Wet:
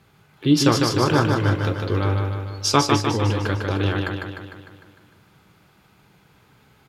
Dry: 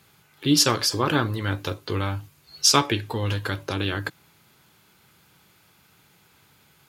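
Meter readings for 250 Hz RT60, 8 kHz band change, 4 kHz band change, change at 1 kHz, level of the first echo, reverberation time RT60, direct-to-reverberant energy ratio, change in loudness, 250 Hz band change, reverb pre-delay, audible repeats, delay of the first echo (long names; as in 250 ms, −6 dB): no reverb audible, −4.5 dB, −2.5 dB, +4.0 dB, −4.0 dB, no reverb audible, no reverb audible, +2.0 dB, +5.5 dB, no reverb audible, 7, 151 ms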